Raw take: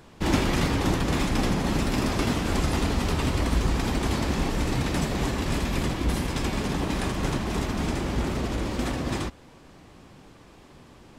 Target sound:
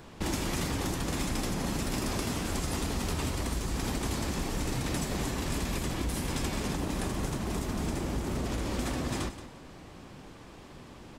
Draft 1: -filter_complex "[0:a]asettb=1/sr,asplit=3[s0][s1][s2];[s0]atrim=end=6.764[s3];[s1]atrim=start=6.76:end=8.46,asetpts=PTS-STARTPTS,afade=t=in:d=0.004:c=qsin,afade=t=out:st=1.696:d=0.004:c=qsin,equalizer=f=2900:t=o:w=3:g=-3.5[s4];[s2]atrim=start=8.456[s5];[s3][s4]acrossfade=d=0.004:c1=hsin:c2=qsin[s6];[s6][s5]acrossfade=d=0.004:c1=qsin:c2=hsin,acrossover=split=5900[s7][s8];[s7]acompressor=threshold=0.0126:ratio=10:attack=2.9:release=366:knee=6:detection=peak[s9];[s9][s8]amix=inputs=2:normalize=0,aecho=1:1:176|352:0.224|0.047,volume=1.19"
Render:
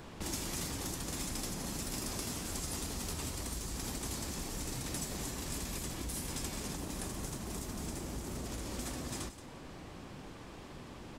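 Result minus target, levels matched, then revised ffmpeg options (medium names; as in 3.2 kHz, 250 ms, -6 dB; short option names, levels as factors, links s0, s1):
compression: peak gain reduction +9 dB
-filter_complex "[0:a]asettb=1/sr,asplit=3[s0][s1][s2];[s0]atrim=end=6.764[s3];[s1]atrim=start=6.76:end=8.46,asetpts=PTS-STARTPTS,afade=t=in:d=0.004:c=qsin,afade=t=out:st=1.696:d=0.004:c=qsin,equalizer=f=2900:t=o:w=3:g=-3.5[s4];[s2]atrim=start=8.456[s5];[s3][s4]acrossfade=d=0.004:c1=hsin:c2=qsin[s6];[s6][s5]acrossfade=d=0.004:c1=qsin:c2=hsin,acrossover=split=5900[s7][s8];[s7]acompressor=threshold=0.0398:ratio=10:attack=2.9:release=366:knee=6:detection=peak[s9];[s9][s8]amix=inputs=2:normalize=0,aecho=1:1:176|352:0.224|0.047,volume=1.19"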